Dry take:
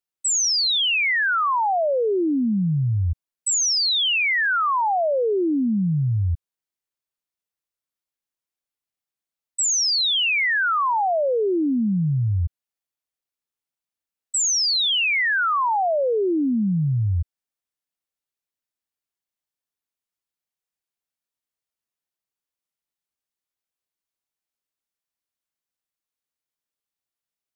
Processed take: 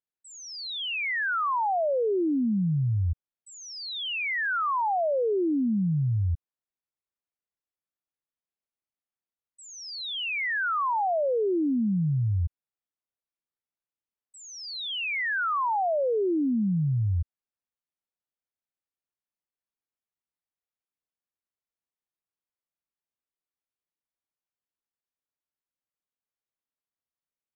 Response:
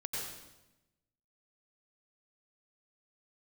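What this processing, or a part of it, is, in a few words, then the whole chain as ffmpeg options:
phone in a pocket: -af "lowpass=3500,highshelf=f=2400:g=-8.5,volume=0.631"

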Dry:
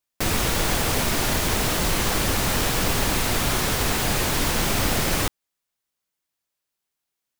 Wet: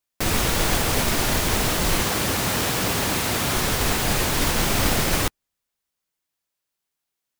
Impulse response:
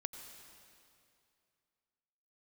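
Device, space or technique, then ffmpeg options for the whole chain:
keyed gated reverb: -filter_complex "[0:a]asettb=1/sr,asplit=3[s0][s1][s2];[s0]atrim=end=2.034[s3];[s1]atrim=start=2.03:end=3.55,asetpts=PTS-STARTPTS,afade=t=in:d=0.004:c=qsin,afade=t=out:st=1.516:d=0.004:c=qsin,highpass=80[s4];[s2]atrim=start=3.546[s5];[s3][s4]acrossfade=d=0.004:c1=hsin:c2=qsin[s6];[s6][s5]acrossfade=d=0.004:c1=qsin:c2=hsin,asplit=3[s7][s8][s9];[1:a]atrim=start_sample=2205[s10];[s8][s10]afir=irnorm=-1:irlink=0[s11];[s9]apad=whole_len=325910[s12];[s11][s12]sidechaingate=range=0.00141:threshold=0.112:ratio=16:detection=peak,volume=0.841[s13];[s7][s13]amix=inputs=2:normalize=0"

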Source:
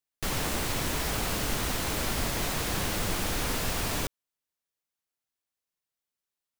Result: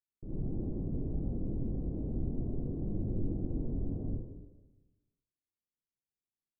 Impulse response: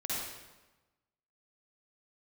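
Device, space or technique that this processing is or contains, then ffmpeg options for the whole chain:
next room: -filter_complex "[0:a]lowpass=f=390:w=0.5412,lowpass=f=390:w=1.3066[s0];[1:a]atrim=start_sample=2205[s1];[s0][s1]afir=irnorm=-1:irlink=0,volume=0.501"

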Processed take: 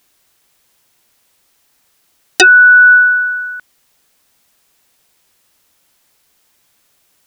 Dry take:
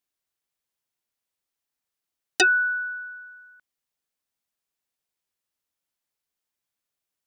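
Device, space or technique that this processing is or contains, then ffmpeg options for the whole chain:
loud club master: -filter_complex "[0:a]acompressor=threshold=0.0631:ratio=6,asoftclip=type=hard:threshold=0.133,alimiter=level_in=26.6:limit=0.891:release=50:level=0:latency=1,asettb=1/sr,asplit=3[s0][s1][s2];[s0]atrim=end=2.834[s3];[s1]atrim=start=2.83:end=3.33,asetpts=PTS-STARTPTS,afade=t=in:d=0.004:c=qsin,afade=t=out:st=0.496:d=0.004:c=qsin,highpass=100[s4];[s2]atrim=start=3.326[s5];[s3][s4]acrossfade=d=0.004:c1=hsin:c2=qsin[s6];[s6][s5]acrossfade=d=0.004:c1=qsin:c2=hsin,volume=0.891"

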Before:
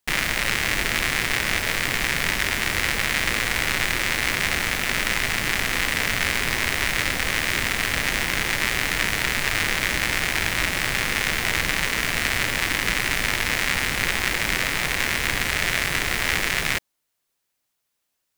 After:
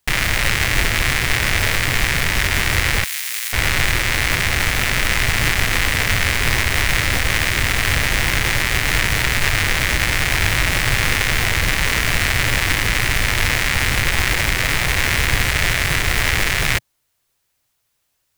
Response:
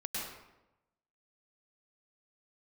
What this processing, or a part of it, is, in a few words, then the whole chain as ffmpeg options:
car stereo with a boomy subwoofer: -filter_complex "[0:a]lowshelf=f=150:t=q:w=1.5:g=6.5,alimiter=limit=0.335:level=0:latency=1:release=38,asettb=1/sr,asplit=3[s0][s1][s2];[s0]atrim=end=3.044[s3];[s1]atrim=start=3.04:end=3.53,asetpts=PTS-STARTPTS,afade=t=in:d=0.004:c=qsin,afade=t=out:st=0.486:d=0.004:c=qsin,aderivative[s4];[s2]atrim=start=3.526[s5];[s3][s4]acrossfade=d=0.004:c1=hsin:c2=qsin[s6];[s6][s5]acrossfade=d=0.004:c1=qsin:c2=hsin,volume=2.24"

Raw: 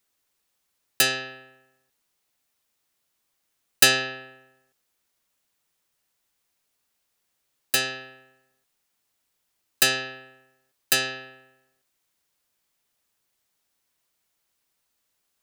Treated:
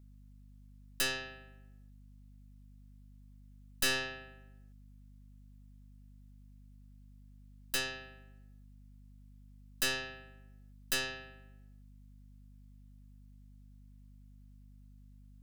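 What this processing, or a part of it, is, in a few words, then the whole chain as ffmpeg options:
valve amplifier with mains hum: -af "aeval=exprs='(tanh(10*val(0)+0.55)-tanh(0.55))/10':c=same,aeval=exprs='val(0)+0.00355*(sin(2*PI*50*n/s)+sin(2*PI*2*50*n/s)/2+sin(2*PI*3*50*n/s)/3+sin(2*PI*4*50*n/s)/4+sin(2*PI*5*50*n/s)/5)':c=same,volume=0.501"

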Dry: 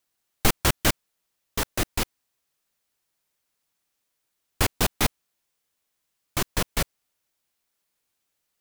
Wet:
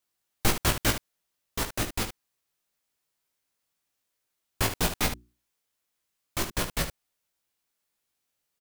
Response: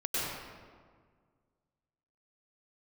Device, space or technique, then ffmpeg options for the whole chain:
slapback doubling: -filter_complex "[0:a]asplit=3[s0][s1][s2];[s1]adelay=18,volume=0.631[s3];[s2]adelay=73,volume=0.335[s4];[s0][s3][s4]amix=inputs=3:normalize=0,asettb=1/sr,asplit=3[s5][s6][s7];[s5]atrim=end=5.014[s8];[s6]atrim=start=5.01:end=6.51,asetpts=PTS-STARTPTS,afade=t=in:d=0.004:c=qsin,afade=t=out:st=1.496:d=0.004:c=qsin,bandreject=f=60:t=h:w=6,bandreject=f=120:t=h:w=6,bandreject=f=180:t=h:w=6,bandreject=f=240:t=h:w=6,bandreject=f=300:t=h:w=6,bandreject=f=360:t=h:w=6[s9];[s7]atrim=start=6.506[s10];[s8][s9]acrossfade=d=0.004:c1=hsin:c2=qsin[s11];[s11][s10]acrossfade=d=0.004:c1=qsin:c2=hsin,volume=0.596"

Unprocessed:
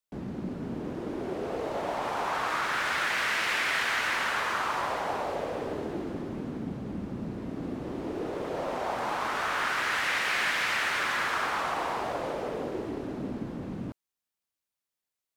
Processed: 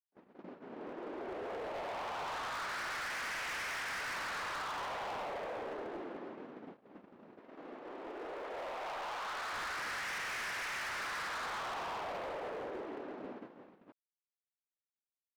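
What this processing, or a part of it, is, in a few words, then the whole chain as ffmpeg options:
walkie-talkie: -filter_complex "[0:a]highpass=460,lowpass=2600,asoftclip=type=hard:threshold=0.0168,agate=range=0.0178:threshold=0.00708:ratio=16:detection=peak,asettb=1/sr,asplit=3[s0][s1][s2];[s0]atrim=end=7.394[s3];[s1]atrim=start=7.39:end=9.53,asetpts=PTS-STARTPTS,afade=t=in:d=0.004:c=qsin,afade=t=out:st=2.136:d=0.004:c=qsin,equalizer=f=120:t=o:w=2.6:g=-8.5[s4];[s2]atrim=start=9.526[s5];[s3][s4]acrossfade=d=0.004:c1=hsin:c2=qsin[s6];[s6][s5]acrossfade=d=0.004:c1=qsin:c2=hsin,volume=0.75"

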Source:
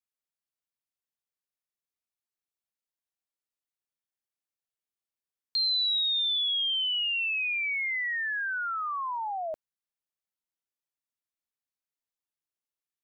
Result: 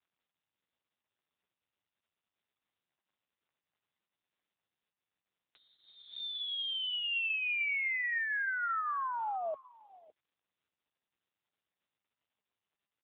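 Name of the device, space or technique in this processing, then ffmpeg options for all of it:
satellite phone: -filter_complex "[0:a]asplit=3[s0][s1][s2];[s0]afade=t=out:st=5.68:d=0.02[s3];[s1]adynamicequalizer=threshold=0.00891:dfrequency=3500:dqfactor=1.7:tfrequency=3500:tqfactor=1.7:attack=5:release=100:ratio=0.375:range=1.5:mode=cutabove:tftype=bell,afade=t=in:st=5.68:d=0.02,afade=t=out:st=7.03:d=0.02[s4];[s2]afade=t=in:st=7.03:d=0.02[s5];[s3][s4][s5]amix=inputs=3:normalize=0,highpass=360,lowpass=3000,aecho=1:1:559:0.126" -ar 8000 -c:a libopencore_amrnb -b:a 6700

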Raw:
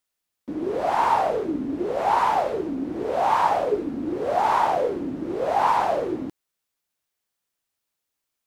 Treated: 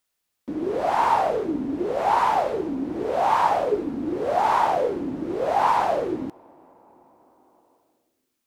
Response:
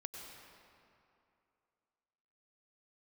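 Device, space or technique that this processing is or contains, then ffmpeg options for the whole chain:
ducked reverb: -filter_complex "[0:a]asplit=3[s0][s1][s2];[1:a]atrim=start_sample=2205[s3];[s1][s3]afir=irnorm=-1:irlink=0[s4];[s2]apad=whole_len=373337[s5];[s4][s5]sidechaincompress=threshold=0.00631:ratio=5:attack=16:release=961,volume=0.891[s6];[s0][s6]amix=inputs=2:normalize=0"

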